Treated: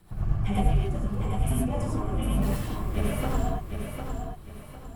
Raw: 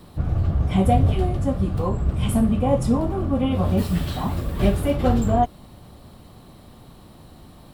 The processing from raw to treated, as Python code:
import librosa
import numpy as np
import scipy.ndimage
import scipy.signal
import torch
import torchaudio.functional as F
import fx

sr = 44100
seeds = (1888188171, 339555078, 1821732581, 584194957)

y = fx.rotary_switch(x, sr, hz=5.0, then_hz=0.9, switch_at_s=3.0)
y = fx.stretch_grains(y, sr, factor=0.64, grain_ms=21.0)
y = fx.graphic_eq(y, sr, hz=(125, 250, 500, 4000), db=(-7, -8, -10, -9))
y = fx.echo_feedback(y, sr, ms=753, feedback_pct=34, wet_db=-6.5)
y = fx.rev_gated(y, sr, seeds[0], gate_ms=130, shape='rising', drr_db=-3.0)
y = F.gain(torch.from_numpy(y), -2.0).numpy()